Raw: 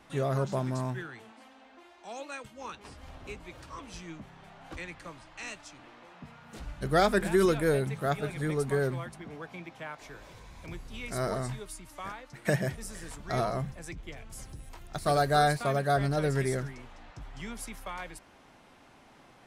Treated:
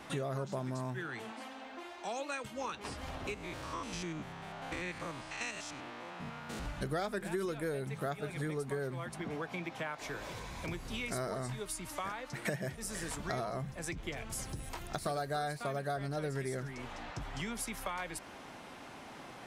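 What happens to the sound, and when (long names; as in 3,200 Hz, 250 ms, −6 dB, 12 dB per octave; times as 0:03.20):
0:03.34–0:06.66: spectrum averaged block by block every 100 ms
whole clip: low-shelf EQ 66 Hz −10.5 dB; downward compressor 5 to 1, threshold −44 dBFS; level +8 dB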